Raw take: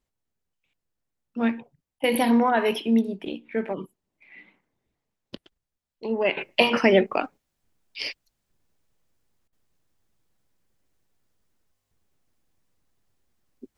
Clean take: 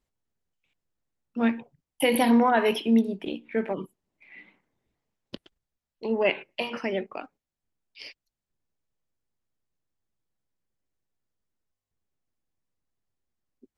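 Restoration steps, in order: interpolate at 1.99/9.48, 45 ms; gain correction -11.5 dB, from 6.37

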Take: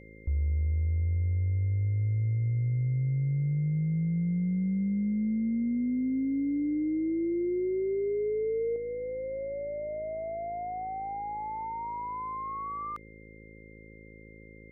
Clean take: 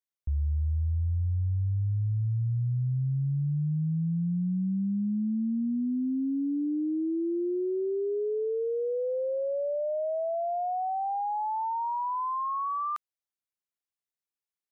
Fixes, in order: de-hum 54.1 Hz, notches 10; notch 2100 Hz, Q 30; gain correction +5.5 dB, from 8.76

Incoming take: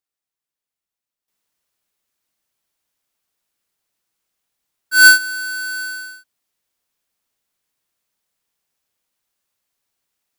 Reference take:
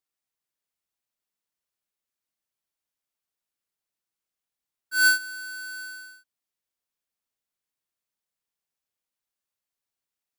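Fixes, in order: gain 0 dB, from 1.28 s -11.5 dB

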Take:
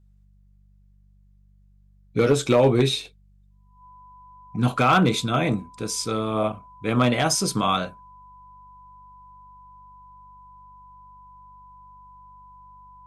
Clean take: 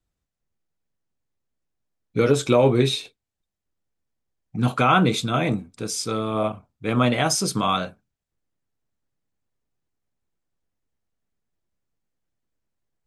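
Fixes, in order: clip repair -10.5 dBFS; de-hum 48.8 Hz, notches 4; notch 1000 Hz, Q 30

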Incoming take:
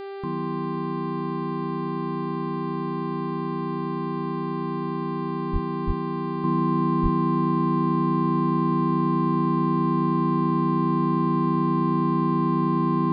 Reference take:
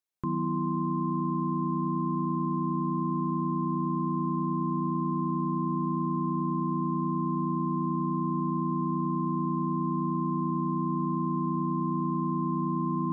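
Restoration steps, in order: de-hum 394.3 Hz, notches 12; de-plosive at 5.52/5.86/7.02; gain 0 dB, from 6.44 s -6.5 dB

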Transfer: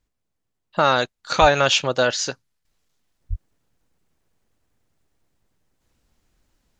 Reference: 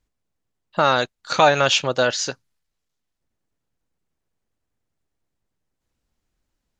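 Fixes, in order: 1.4–1.52 HPF 140 Hz 24 dB/oct; 3.29–3.41 HPF 140 Hz 24 dB/oct; gain 0 dB, from 2.65 s -9 dB

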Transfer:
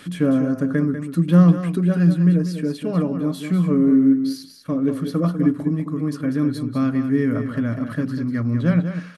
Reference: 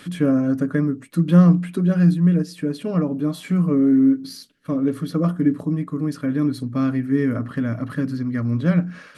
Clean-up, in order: inverse comb 0.195 s -9 dB

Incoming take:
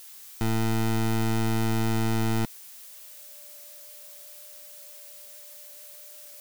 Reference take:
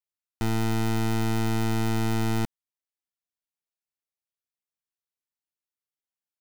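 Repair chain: notch 590 Hz, Q 30; noise print and reduce 30 dB

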